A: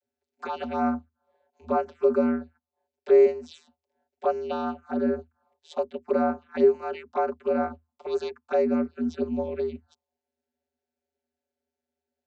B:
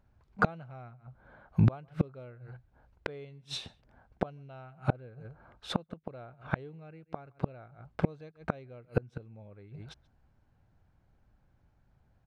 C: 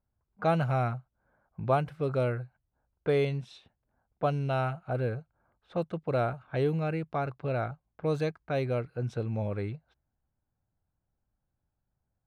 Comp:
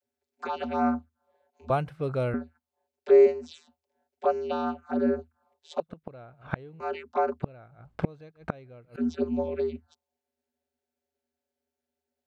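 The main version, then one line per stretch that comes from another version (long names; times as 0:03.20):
A
0:01.70–0:02.34: punch in from C
0:05.80–0:06.80: punch in from B
0:07.42–0:08.96: punch in from B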